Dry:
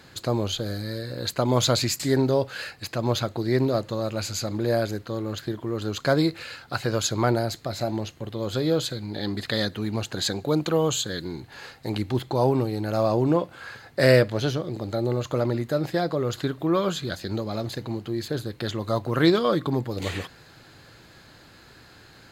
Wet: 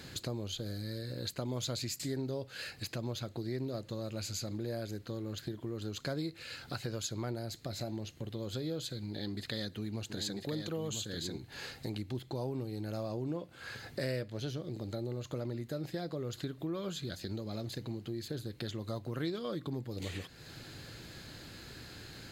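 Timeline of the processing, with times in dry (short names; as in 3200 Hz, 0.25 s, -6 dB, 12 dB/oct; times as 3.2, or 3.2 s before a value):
9.1–11.38 echo 0.994 s -5.5 dB
whole clip: bell 1000 Hz -8 dB 1.8 oct; compressor 3:1, threshold -44 dBFS; gain +3.5 dB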